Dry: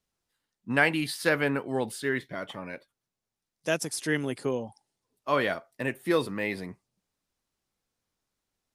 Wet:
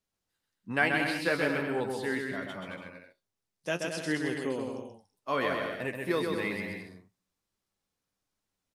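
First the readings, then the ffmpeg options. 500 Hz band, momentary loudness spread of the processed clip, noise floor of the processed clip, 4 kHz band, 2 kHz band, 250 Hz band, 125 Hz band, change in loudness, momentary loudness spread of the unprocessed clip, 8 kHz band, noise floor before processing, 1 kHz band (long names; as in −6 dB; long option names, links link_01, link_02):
−2.5 dB, 15 LU, below −85 dBFS, −2.5 dB, −1.5 dB, −2.0 dB, −4.0 dB, −2.5 dB, 16 LU, −7.5 dB, below −85 dBFS, −1.5 dB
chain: -filter_complex "[0:a]acrossover=split=6100[link_01][link_02];[link_02]acompressor=threshold=-46dB:ratio=4:attack=1:release=60[link_03];[link_01][link_03]amix=inputs=2:normalize=0,flanger=delay=9.5:depth=2:regen=52:speed=1.2:shape=triangular,aecho=1:1:130|221|284.7|329.3|360.5:0.631|0.398|0.251|0.158|0.1"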